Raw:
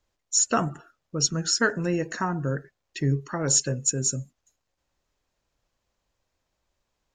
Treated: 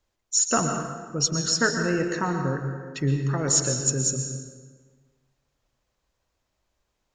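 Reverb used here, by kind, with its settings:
dense smooth reverb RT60 1.5 s, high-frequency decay 0.65×, pre-delay 105 ms, DRR 4.5 dB

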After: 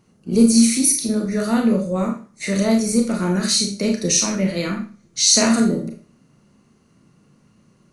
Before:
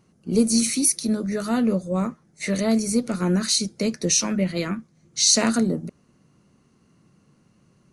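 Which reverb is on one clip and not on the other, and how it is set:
four-comb reverb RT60 0.37 s, combs from 27 ms, DRR 2 dB
level +1.5 dB

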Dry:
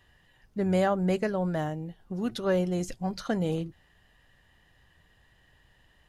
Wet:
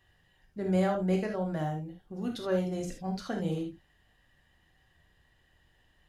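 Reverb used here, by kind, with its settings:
reverb whose tail is shaped and stops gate 100 ms flat, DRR 2 dB
level −6.5 dB

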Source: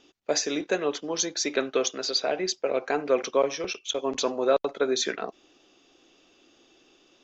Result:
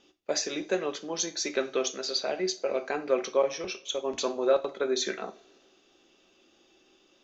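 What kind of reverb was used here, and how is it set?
coupled-rooms reverb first 0.29 s, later 2.5 s, from −28 dB, DRR 7 dB
level −4 dB

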